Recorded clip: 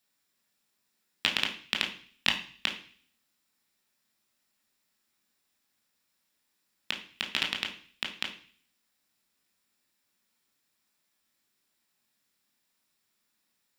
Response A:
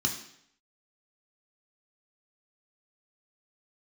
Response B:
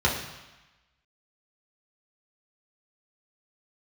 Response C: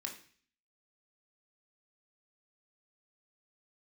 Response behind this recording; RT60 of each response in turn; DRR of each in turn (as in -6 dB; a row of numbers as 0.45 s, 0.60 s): C; 0.70 s, 1.1 s, 0.45 s; 1.0 dB, -4.5 dB, 1.0 dB